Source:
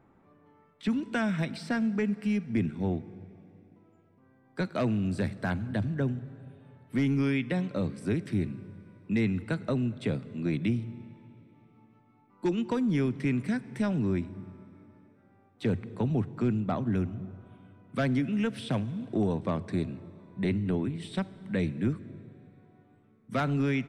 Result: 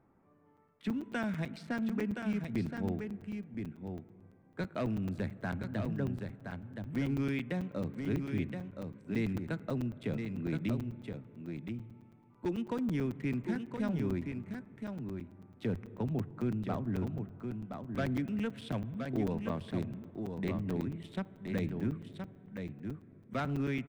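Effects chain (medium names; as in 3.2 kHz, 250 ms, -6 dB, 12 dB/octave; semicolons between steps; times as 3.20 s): local Wiener filter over 9 samples; delay 1021 ms -6 dB; crackling interface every 0.11 s, samples 256, zero, from 0.57 s; trim -6 dB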